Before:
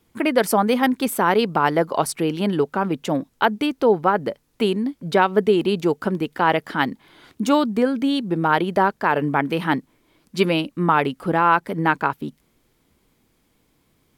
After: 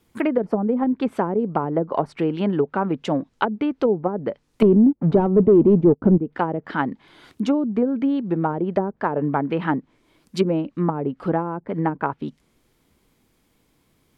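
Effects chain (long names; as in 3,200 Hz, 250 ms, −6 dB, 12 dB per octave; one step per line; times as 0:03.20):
0:04.62–0:06.18: leveller curve on the samples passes 3
treble cut that deepens with the level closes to 400 Hz, closed at −13.5 dBFS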